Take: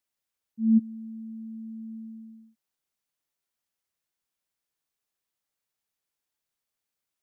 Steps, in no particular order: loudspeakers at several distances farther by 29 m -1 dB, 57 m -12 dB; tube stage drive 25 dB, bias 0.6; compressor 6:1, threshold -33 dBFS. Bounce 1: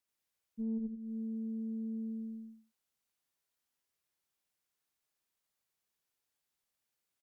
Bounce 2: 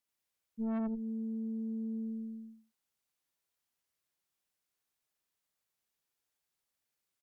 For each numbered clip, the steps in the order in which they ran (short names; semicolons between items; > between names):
loudspeakers at several distances > compressor > tube stage; loudspeakers at several distances > tube stage > compressor